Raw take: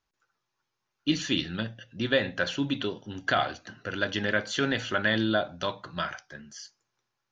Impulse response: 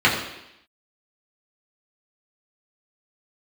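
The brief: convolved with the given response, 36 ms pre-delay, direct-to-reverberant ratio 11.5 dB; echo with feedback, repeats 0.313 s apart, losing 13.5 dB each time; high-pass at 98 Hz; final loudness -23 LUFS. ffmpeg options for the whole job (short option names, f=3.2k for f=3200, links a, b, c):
-filter_complex "[0:a]highpass=98,aecho=1:1:313|626:0.211|0.0444,asplit=2[a][b];[1:a]atrim=start_sample=2205,adelay=36[c];[b][c]afir=irnorm=-1:irlink=0,volume=-33dB[d];[a][d]amix=inputs=2:normalize=0,volume=5.5dB"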